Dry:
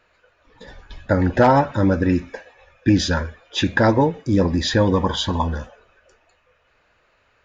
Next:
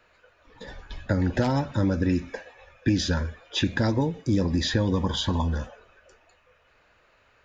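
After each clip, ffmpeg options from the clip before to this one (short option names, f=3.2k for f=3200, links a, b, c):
-filter_complex "[0:a]acrossover=split=320|3200[a][b][c];[a]acompressor=threshold=-22dB:ratio=4[d];[b]acompressor=threshold=-31dB:ratio=4[e];[c]acompressor=threshold=-30dB:ratio=4[f];[d][e][f]amix=inputs=3:normalize=0"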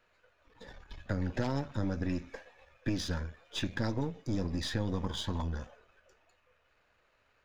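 -af "aeval=exprs='if(lt(val(0),0),0.447*val(0),val(0))':c=same,volume=-7dB"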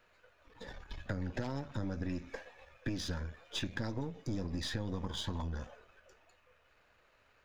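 -af "acompressor=threshold=-38dB:ratio=3,volume=2.5dB"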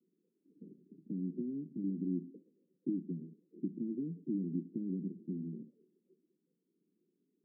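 -af "asuperpass=centerf=250:order=12:qfactor=1.1,volume=4dB"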